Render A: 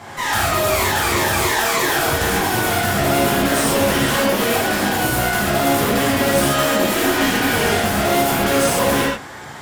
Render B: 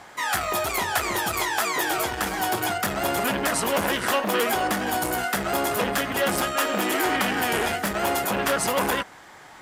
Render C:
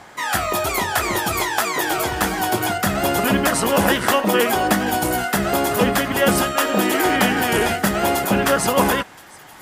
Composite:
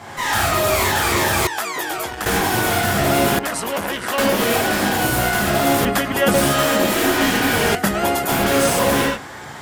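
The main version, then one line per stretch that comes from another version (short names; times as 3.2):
A
1.47–2.26 from B
3.39–4.18 from B
5.85–6.34 from C
7.75–8.29 from C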